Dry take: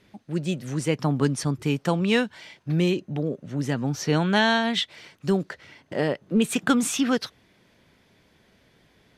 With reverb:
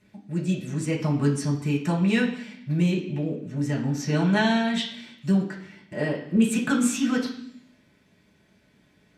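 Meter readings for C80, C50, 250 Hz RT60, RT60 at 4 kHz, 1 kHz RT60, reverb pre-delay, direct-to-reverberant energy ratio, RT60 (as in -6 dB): 11.0 dB, 7.0 dB, 1.0 s, 0.85 s, 0.65 s, 3 ms, -4.5 dB, 0.65 s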